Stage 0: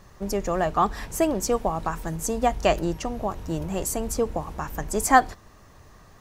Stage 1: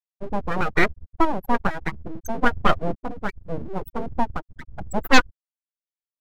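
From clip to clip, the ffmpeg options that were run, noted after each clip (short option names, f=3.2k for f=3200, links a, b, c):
-af "afftfilt=real='re*gte(hypot(re,im),0.178)':imag='im*gte(hypot(re,im),0.178)':win_size=1024:overlap=0.75,aeval=exprs='abs(val(0))':c=same,aeval=exprs='0.708*(cos(1*acos(clip(val(0)/0.708,-1,1)))-cos(1*PI/2))+0.178*(cos(6*acos(clip(val(0)/0.708,-1,1)))-cos(6*PI/2))':c=same"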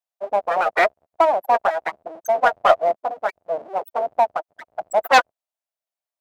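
-filter_complex "[0:a]highpass=f=660:t=q:w=4.9,asplit=2[a][b];[b]asoftclip=type=hard:threshold=-16.5dB,volume=-5.5dB[c];[a][c]amix=inputs=2:normalize=0,volume=-2.5dB"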